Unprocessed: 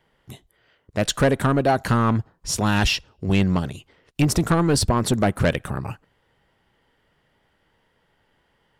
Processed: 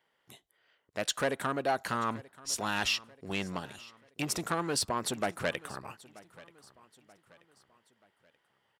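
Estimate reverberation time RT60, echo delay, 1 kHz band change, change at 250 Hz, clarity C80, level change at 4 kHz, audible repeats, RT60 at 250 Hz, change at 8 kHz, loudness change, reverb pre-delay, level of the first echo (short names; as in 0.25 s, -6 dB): none, 0.932 s, -9.0 dB, -16.5 dB, none, -7.0 dB, 2, none, -7.0 dB, -11.5 dB, none, -21.0 dB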